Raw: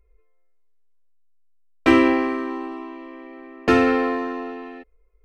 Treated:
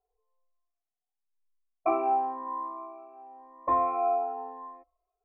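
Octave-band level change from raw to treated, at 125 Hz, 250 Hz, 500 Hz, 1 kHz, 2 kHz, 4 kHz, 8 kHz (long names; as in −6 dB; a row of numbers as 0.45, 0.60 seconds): below −20 dB, −21.0 dB, −9.5 dB, −0.5 dB, −24.5 dB, below −35 dB, can't be measured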